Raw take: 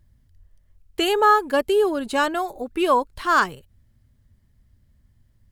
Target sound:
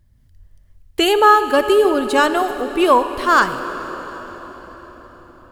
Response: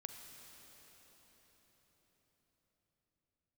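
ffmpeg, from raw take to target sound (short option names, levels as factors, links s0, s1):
-filter_complex "[0:a]dynaudnorm=f=130:g=3:m=1.78,asplit=2[s0][s1];[1:a]atrim=start_sample=2205[s2];[s1][s2]afir=irnorm=-1:irlink=0,volume=2.11[s3];[s0][s3]amix=inputs=2:normalize=0,volume=0.531"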